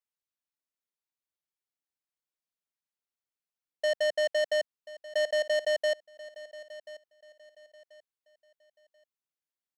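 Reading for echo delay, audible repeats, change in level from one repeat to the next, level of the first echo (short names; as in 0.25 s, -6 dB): 1.035 s, 2, -10.5 dB, -17.5 dB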